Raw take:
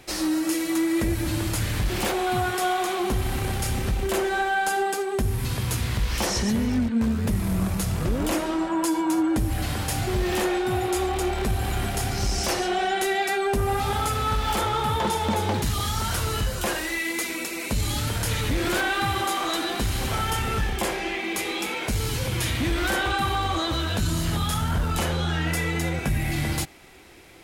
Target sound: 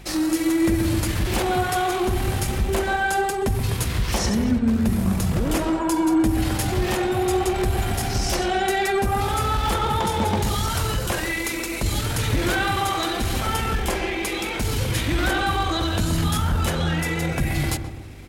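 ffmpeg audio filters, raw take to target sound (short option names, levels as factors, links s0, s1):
-filter_complex "[0:a]aeval=exprs='val(0)+0.00708*(sin(2*PI*50*n/s)+sin(2*PI*2*50*n/s)/2+sin(2*PI*3*50*n/s)/3+sin(2*PI*4*50*n/s)/4+sin(2*PI*5*50*n/s)/5)':c=same,atempo=1.5,asplit=2[s0][s1];[s1]adelay=128,lowpass=f=940:p=1,volume=0.501,asplit=2[s2][s3];[s3]adelay=128,lowpass=f=940:p=1,volume=0.53,asplit=2[s4][s5];[s5]adelay=128,lowpass=f=940:p=1,volume=0.53,asplit=2[s6][s7];[s7]adelay=128,lowpass=f=940:p=1,volume=0.53,asplit=2[s8][s9];[s9]adelay=128,lowpass=f=940:p=1,volume=0.53,asplit=2[s10][s11];[s11]adelay=128,lowpass=f=940:p=1,volume=0.53,asplit=2[s12][s13];[s13]adelay=128,lowpass=f=940:p=1,volume=0.53[s14];[s0][s2][s4][s6][s8][s10][s12][s14]amix=inputs=8:normalize=0,volume=1.26"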